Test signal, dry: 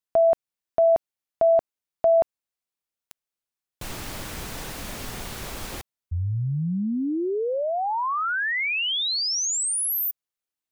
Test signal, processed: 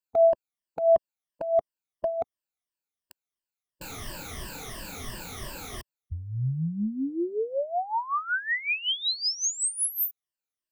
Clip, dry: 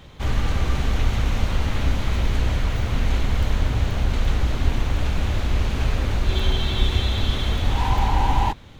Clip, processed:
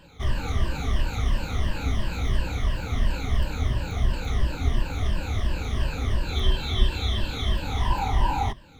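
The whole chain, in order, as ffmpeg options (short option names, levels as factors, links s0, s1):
-af "afftfilt=real='re*pow(10,17/40*sin(2*PI*(1.3*log(max(b,1)*sr/1024/100)/log(2)-(-2.9)*(pts-256)/sr)))':imag='im*pow(10,17/40*sin(2*PI*(1.3*log(max(b,1)*sr/1024/100)/log(2)-(-2.9)*(pts-256)/sr)))':win_size=1024:overlap=0.75,volume=0.447"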